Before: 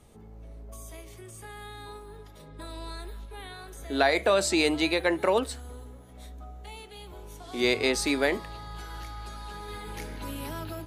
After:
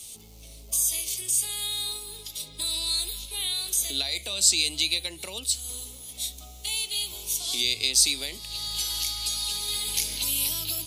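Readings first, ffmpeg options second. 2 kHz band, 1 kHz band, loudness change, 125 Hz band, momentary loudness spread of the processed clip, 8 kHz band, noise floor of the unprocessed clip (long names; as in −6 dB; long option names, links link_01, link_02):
−5.0 dB, −13.5 dB, +2.0 dB, −4.0 dB, 13 LU, +15.5 dB, −48 dBFS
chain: -filter_complex "[0:a]acrossover=split=150[link_01][link_02];[link_02]acompressor=threshold=-40dB:ratio=4[link_03];[link_01][link_03]amix=inputs=2:normalize=0,aexciter=amount=14.4:drive=7.6:freq=2600,volume=-3.5dB"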